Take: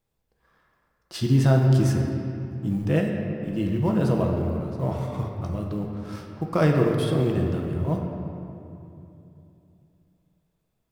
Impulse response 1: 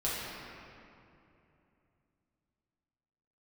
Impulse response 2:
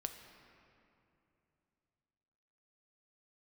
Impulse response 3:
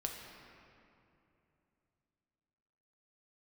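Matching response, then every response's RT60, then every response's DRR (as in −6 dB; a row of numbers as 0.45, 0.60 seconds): 3; 2.8, 2.8, 2.8 seconds; −9.0, 5.5, 0.5 decibels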